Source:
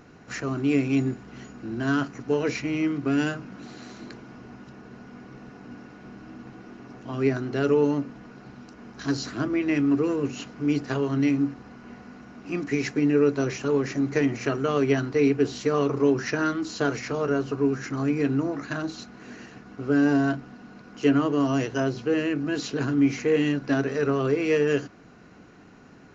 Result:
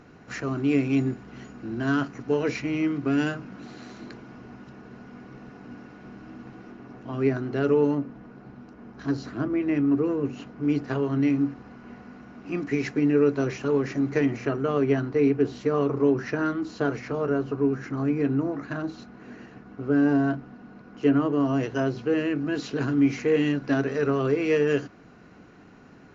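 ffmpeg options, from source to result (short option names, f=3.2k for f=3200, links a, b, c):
-af "asetnsamples=n=441:p=0,asendcmd='6.72 lowpass f 2300;7.95 lowpass f 1200;10.63 lowpass f 2100;11.3 lowpass f 3100;14.41 lowpass f 1500;21.63 lowpass f 3100;22.71 lowpass f 4800',lowpass=f=4.6k:p=1"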